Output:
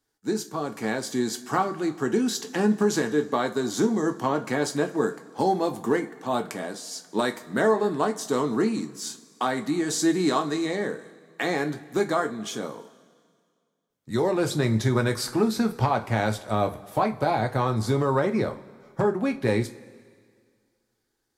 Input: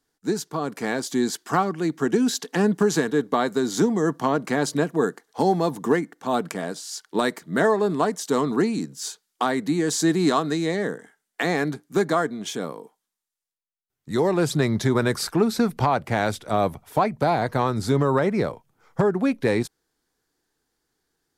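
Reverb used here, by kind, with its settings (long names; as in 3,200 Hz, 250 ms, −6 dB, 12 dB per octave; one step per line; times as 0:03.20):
coupled-rooms reverb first 0.22 s, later 2 s, from −21 dB, DRR 4.5 dB
level −3.5 dB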